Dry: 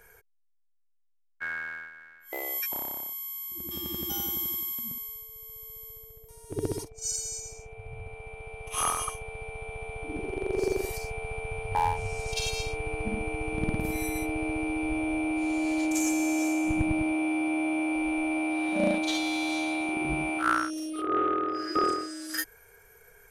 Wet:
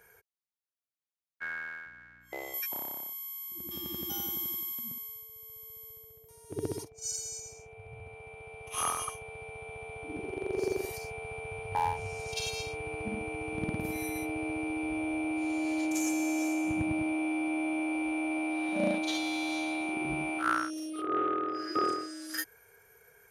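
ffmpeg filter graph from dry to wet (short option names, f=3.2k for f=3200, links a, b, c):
-filter_complex "[0:a]asettb=1/sr,asplit=3[a][b][c];[a]atrim=end=1.854[d];[b]atrim=start=1.85:end=2.54,asetpts=PTS-STARTPTS,afade=t=in:d=0.004:c=qsin,afade=t=out:st=0.686:d=0.004:c=qsin,aeval=exprs='val(0)+0.00141*(sin(2*PI*60*n/s)+sin(2*PI*2*60*n/s)/2+sin(2*PI*3*60*n/s)/3+sin(2*PI*4*60*n/s)/4+sin(2*PI*5*60*n/s)/5)':c=same,lowpass=f=9.4k:w=0.5412,lowpass=f=9.4k:w=1.3066[e];[c]atrim=start=2.536[f];[d][e]acrossfade=d=0.004:c1=hsin:c2=qsin[g];[g][f]acrossfade=d=0.004:c1=qsin:c2=hsin,highpass=84,bandreject=f=7.9k:w=9.5,volume=-3.5dB"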